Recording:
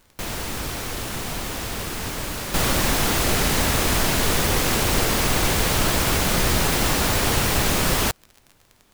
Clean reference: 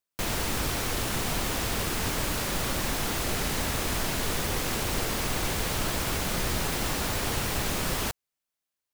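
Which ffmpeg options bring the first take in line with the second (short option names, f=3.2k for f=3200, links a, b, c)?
-af "adeclick=t=4,agate=range=-21dB:threshold=-46dB,asetnsamples=n=441:p=0,asendcmd='2.54 volume volume -8.5dB',volume=0dB"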